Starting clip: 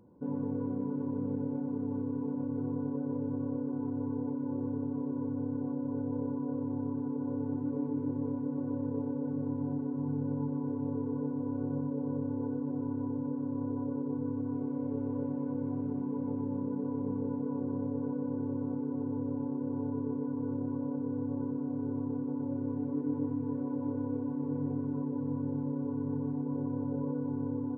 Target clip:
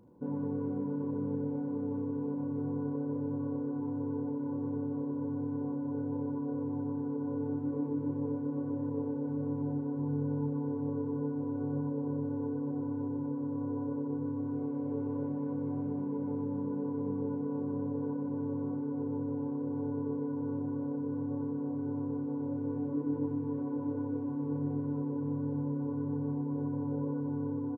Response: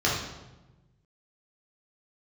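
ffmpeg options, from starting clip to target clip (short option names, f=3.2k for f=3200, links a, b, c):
-af "aecho=1:1:34|77:0.355|0.335"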